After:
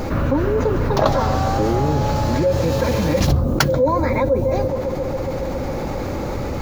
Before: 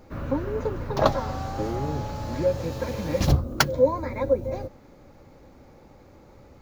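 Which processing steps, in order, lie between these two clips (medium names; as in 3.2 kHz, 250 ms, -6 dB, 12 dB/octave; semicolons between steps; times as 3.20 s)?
bucket-brigade echo 137 ms, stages 1024, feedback 79%, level -19 dB; level flattener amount 70%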